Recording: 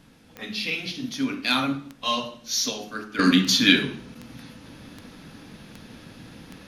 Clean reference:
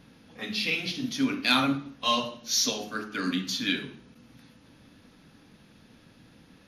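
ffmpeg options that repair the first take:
ffmpeg -i in.wav -af "adeclick=threshold=4,agate=range=-21dB:threshold=-39dB,asetnsamples=nb_out_samples=441:pad=0,asendcmd='3.19 volume volume -11dB',volume=0dB" out.wav

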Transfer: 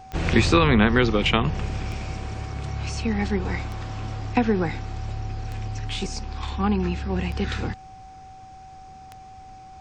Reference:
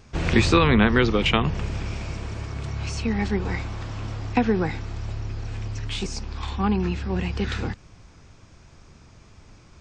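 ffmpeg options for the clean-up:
ffmpeg -i in.wav -af "adeclick=threshold=4,bandreject=frequency=760:width=30" out.wav

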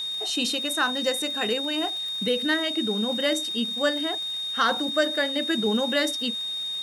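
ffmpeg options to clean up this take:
ffmpeg -i in.wav -af "adeclick=threshold=4,bandreject=frequency=3700:width=30,afwtdn=0.004" out.wav

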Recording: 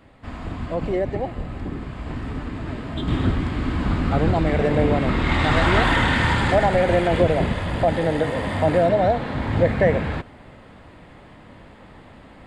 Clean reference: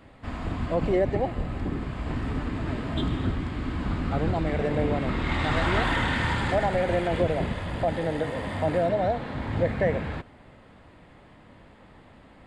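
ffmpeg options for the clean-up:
ffmpeg -i in.wav -af "asetnsamples=nb_out_samples=441:pad=0,asendcmd='3.08 volume volume -6.5dB',volume=0dB" out.wav

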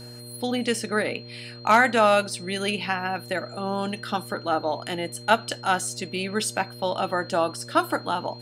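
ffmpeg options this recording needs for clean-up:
ffmpeg -i in.wav -af "bandreject=frequency=119.8:width_type=h:width=4,bandreject=frequency=239.6:width_type=h:width=4,bandreject=frequency=359.4:width_type=h:width=4,bandreject=frequency=479.2:width_type=h:width=4,bandreject=frequency=599:width_type=h:width=4,bandreject=frequency=4200:width=30" out.wav

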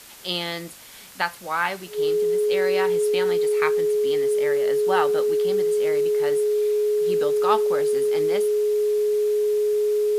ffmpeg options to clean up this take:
ffmpeg -i in.wav -af "bandreject=frequency=420:width=30,afwtdn=0.0063" out.wav

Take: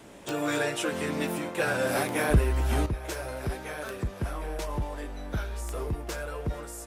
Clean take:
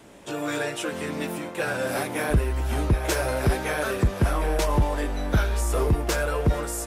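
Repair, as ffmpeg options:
ffmpeg -i in.wav -af "adeclick=threshold=4,asetnsamples=nb_out_samples=441:pad=0,asendcmd='2.86 volume volume 10dB',volume=0dB" out.wav

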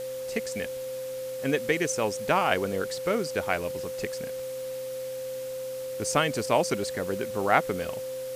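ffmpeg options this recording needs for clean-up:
ffmpeg -i in.wav -af "bandreject=frequency=129.2:width_type=h:width=4,bandreject=frequency=258.4:width_type=h:width=4,bandreject=frequency=387.6:width_type=h:width=4,bandreject=frequency=516.8:width_type=h:width=4,bandreject=frequency=520:width=30,afwtdn=0.005" out.wav

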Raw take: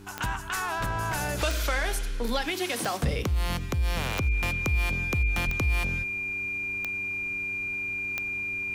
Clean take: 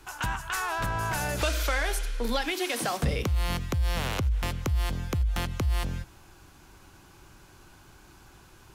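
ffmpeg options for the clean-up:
ffmpeg -i in.wav -filter_complex "[0:a]adeclick=threshold=4,bandreject=frequency=98.4:width_type=h:width=4,bandreject=frequency=196.8:width_type=h:width=4,bandreject=frequency=295.2:width_type=h:width=4,bandreject=frequency=393.6:width_type=h:width=4,bandreject=frequency=2400:width=30,asplit=3[link_01][link_02][link_03];[link_01]afade=type=out:start_time=5.45:duration=0.02[link_04];[link_02]highpass=frequency=140:width=0.5412,highpass=frequency=140:width=1.3066,afade=type=in:start_time=5.45:duration=0.02,afade=type=out:start_time=5.57:duration=0.02[link_05];[link_03]afade=type=in:start_time=5.57:duration=0.02[link_06];[link_04][link_05][link_06]amix=inputs=3:normalize=0" out.wav

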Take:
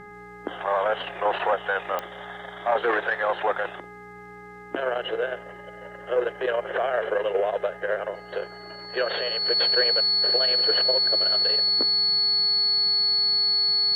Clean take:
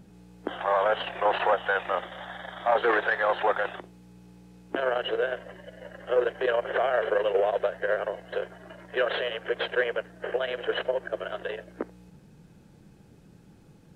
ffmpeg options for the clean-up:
ffmpeg -i in.wav -af "adeclick=threshold=4,bandreject=frequency=414.1:width_type=h:width=4,bandreject=frequency=828.2:width_type=h:width=4,bandreject=frequency=1242.3:width_type=h:width=4,bandreject=frequency=1656.4:width_type=h:width=4,bandreject=frequency=2070.5:width_type=h:width=4,bandreject=frequency=4400:width=30" out.wav

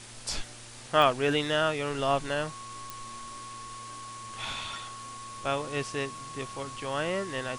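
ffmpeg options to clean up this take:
ffmpeg -i in.wav -af "adeclick=threshold=4,bandreject=frequency=116.5:width_type=h:width=4,bandreject=frequency=233:width_type=h:width=4,bandreject=frequency=349.5:width_type=h:width=4,bandreject=frequency=466:width_type=h:width=4,bandreject=frequency=582.5:width_type=h:width=4,bandreject=frequency=1100:width=30,afwtdn=0.0056" out.wav

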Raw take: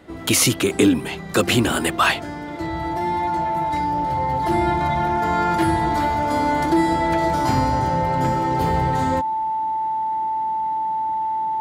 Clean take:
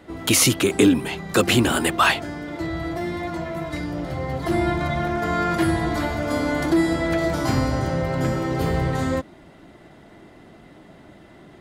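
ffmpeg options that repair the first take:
ffmpeg -i in.wav -af "bandreject=frequency=880:width=30" out.wav

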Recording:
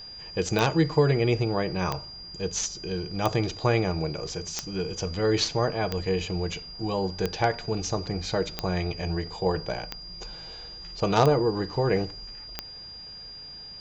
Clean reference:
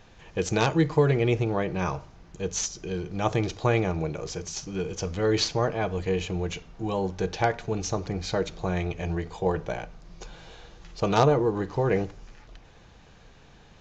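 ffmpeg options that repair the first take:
ffmpeg -i in.wav -af "adeclick=threshold=4,bandreject=frequency=4800:width=30" out.wav

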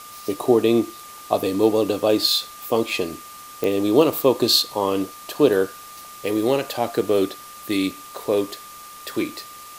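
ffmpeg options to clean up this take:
ffmpeg -i in.wav -af "adeclick=threshold=4,bandreject=frequency=1200:width=30,afwtdn=0.0079" out.wav

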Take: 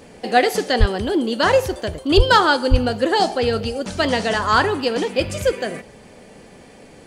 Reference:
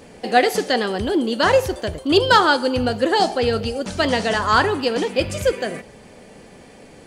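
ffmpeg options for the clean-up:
ffmpeg -i in.wav -filter_complex "[0:a]asplit=3[link_01][link_02][link_03];[link_01]afade=type=out:start_time=0.79:duration=0.02[link_04];[link_02]highpass=frequency=140:width=0.5412,highpass=frequency=140:width=1.3066,afade=type=in:start_time=0.79:duration=0.02,afade=type=out:start_time=0.91:duration=0.02[link_05];[link_03]afade=type=in:start_time=0.91:duration=0.02[link_06];[link_04][link_05][link_06]amix=inputs=3:normalize=0,asplit=3[link_07][link_08][link_09];[link_07]afade=type=out:start_time=2.16:duration=0.02[link_10];[link_08]highpass=frequency=140:width=0.5412,highpass=frequency=140:width=1.3066,afade=type=in:start_time=2.16:duration=0.02,afade=type=out:start_time=2.28:duration=0.02[link_11];[link_09]afade=type=in:start_time=2.28:duration=0.02[link_12];[link_10][link_11][link_12]amix=inputs=3:normalize=0,asplit=3[link_13][link_14][link_15];[link_13]afade=type=out:start_time=2.7:duration=0.02[link_16];[link_14]highpass=frequency=140:width=0.5412,highpass=frequency=140:width=1.3066,afade=type=in:start_time=2.7:duration=0.02,afade=type=out:start_time=2.82:duration=0.02[link_17];[link_15]afade=type=in:start_time=2.82:duration=0.02[link_18];[link_16][link_17][link_18]amix=inputs=3:normalize=0" out.wav

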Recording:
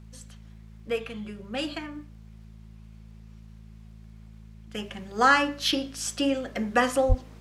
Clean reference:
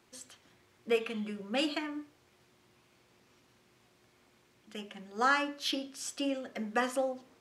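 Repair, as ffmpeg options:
ffmpeg -i in.wav -filter_complex "[0:a]adeclick=threshold=4,bandreject=frequency=54.3:width_type=h:width=4,bandreject=frequency=108.6:width_type=h:width=4,bandreject=frequency=162.9:width_type=h:width=4,bandreject=frequency=217.2:width_type=h:width=4,asplit=3[link_01][link_02][link_03];[link_01]afade=type=out:start_time=7.08:duration=0.02[link_04];[link_02]highpass=frequency=140:width=0.5412,highpass=frequency=140:width=1.3066,afade=type=in:start_time=7.08:duration=0.02,afade=type=out:start_time=7.2:duration=0.02[link_05];[link_03]afade=type=in:start_time=7.2:duration=0.02[link_06];[link_04][link_05][link_06]amix=inputs=3:normalize=0,asetnsamples=nb_out_samples=441:pad=0,asendcmd='4.74 volume volume -8dB',volume=0dB" out.wav

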